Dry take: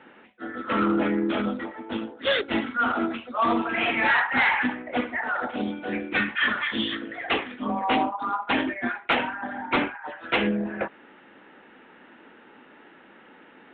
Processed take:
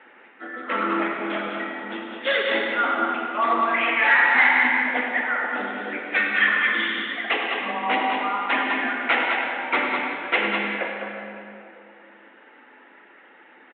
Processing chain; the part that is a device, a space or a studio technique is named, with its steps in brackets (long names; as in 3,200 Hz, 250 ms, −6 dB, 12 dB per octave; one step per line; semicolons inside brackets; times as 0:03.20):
reverb reduction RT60 2 s
station announcement (band-pass filter 370–3,700 Hz; parametric band 2,000 Hz +6.5 dB 0.47 octaves; loudspeakers that aren't time-aligned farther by 35 metres −10 dB, 70 metres −5 dB; convolution reverb RT60 2.8 s, pre-delay 42 ms, DRR 1 dB)